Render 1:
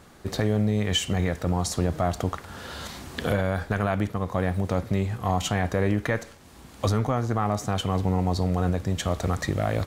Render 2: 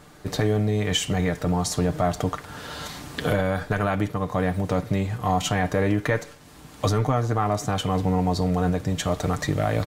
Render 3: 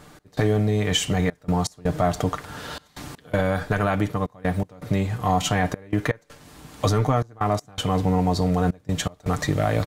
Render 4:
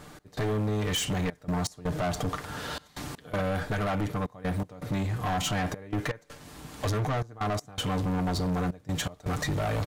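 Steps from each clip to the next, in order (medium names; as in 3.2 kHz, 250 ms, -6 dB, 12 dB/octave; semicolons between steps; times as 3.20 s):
comb 6.7 ms, depth 48%; trim +1.5 dB
trance gate "x.xxxxx." 81 bpm -24 dB; trim +1.5 dB
saturation -25 dBFS, distortion -7 dB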